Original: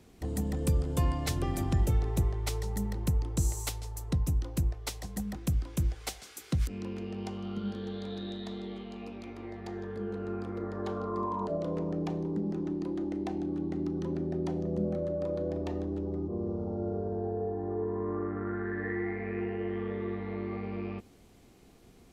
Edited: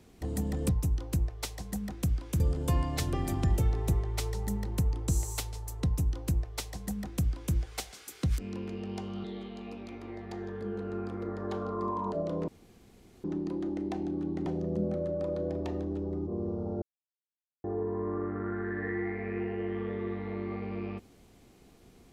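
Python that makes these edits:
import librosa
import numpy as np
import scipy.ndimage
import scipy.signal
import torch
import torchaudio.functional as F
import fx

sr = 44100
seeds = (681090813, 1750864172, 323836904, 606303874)

y = fx.edit(x, sr, fx.duplicate(start_s=4.13, length_s=1.71, to_s=0.69),
    fx.cut(start_s=7.53, length_s=1.06),
    fx.room_tone_fill(start_s=11.83, length_s=0.76),
    fx.cut(start_s=13.81, length_s=0.66),
    fx.silence(start_s=16.83, length_s=0.82), tone=tone)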